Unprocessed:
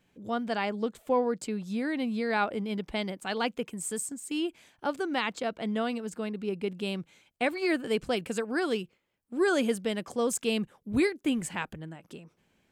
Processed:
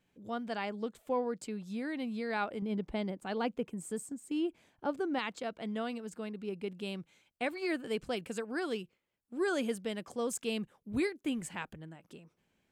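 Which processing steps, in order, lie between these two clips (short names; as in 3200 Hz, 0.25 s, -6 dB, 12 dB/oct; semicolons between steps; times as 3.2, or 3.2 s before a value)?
2.62–5.19 tilt shelf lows +5.5 dB, about 1200 Hz; gain -6.5 dB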